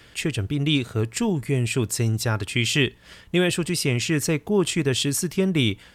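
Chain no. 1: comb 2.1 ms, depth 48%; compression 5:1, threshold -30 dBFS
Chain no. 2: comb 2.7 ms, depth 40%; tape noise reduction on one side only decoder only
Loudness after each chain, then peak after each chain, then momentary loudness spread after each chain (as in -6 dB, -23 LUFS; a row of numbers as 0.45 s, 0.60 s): -32.5 LUFS, -23.0 LUFS; -16.0 dBFS, -6.5 dBFS; 2 LU, 4 LU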